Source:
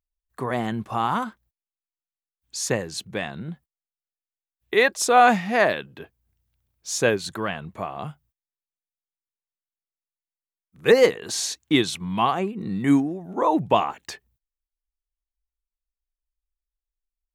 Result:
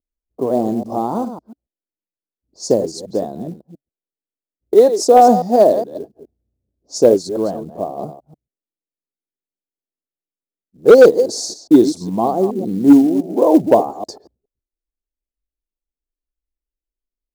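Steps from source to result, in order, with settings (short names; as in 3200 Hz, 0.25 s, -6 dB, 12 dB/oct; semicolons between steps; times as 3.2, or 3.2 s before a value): reverse delay 0.139 s, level -10.5 dB; EQ curve 140 Hz 0 dB, 280 Hz +13 dB, 640 Hz +12 dB, 1800 Hz -22 dB, 2700 Hz -30 dB, 4700 Hz +6 dB, 7300 Hz +2 dB, 11000 Hz -4 dB; low-pass opened by the level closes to 380 Hz, open at -20 dBFS; short-mantissa float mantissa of 4-bit; gain -1 dB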